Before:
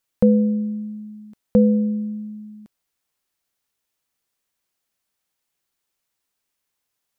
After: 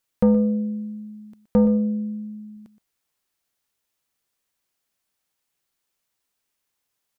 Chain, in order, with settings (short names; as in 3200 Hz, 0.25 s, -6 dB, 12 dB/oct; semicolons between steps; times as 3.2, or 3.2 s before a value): soft clip -9 dBFS, distortion -18 dB; 1.65–2.57 notch comb 550 Hz; echo 0.121 s -14.5 dB